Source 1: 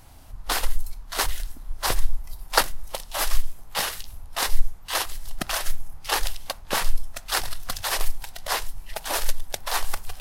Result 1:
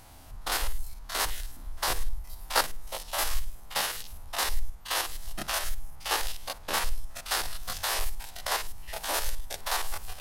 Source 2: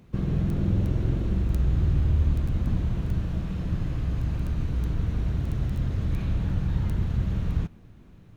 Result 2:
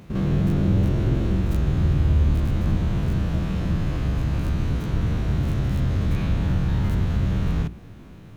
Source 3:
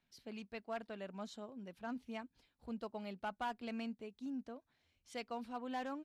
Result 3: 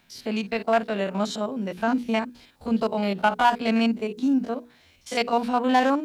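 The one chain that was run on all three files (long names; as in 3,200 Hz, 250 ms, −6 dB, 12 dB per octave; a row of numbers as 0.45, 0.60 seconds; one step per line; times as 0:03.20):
spectrum averaged block by block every 50 ms
low-shelf EQ 120 Hz −5.5 dB
in parallel at −1 dB: downward compressor, threshold −34 dBFS
on the sum: mains-hum notches 60/120/180/240/300/360/420/480 Hz
normalise the peak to −9 dBFS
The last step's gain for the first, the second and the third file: −3.5, +6.5, +17.5 decibels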